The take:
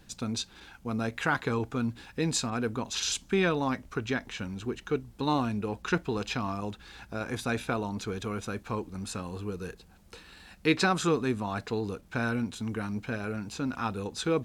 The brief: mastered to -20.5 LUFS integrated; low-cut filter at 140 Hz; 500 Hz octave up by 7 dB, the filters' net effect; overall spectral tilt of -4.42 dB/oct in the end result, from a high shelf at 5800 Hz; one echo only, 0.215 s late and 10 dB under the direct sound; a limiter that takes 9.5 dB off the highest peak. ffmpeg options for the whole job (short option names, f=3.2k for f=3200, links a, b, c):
-af "highpass=140,equalizer=f=500:t=o:g=8.5,highshelf=f=5.8k:g=-7,alimiter=limit=-18.5dB:level=0:latency=1,aecho=1:1:215:0.316,volume=10.5dB"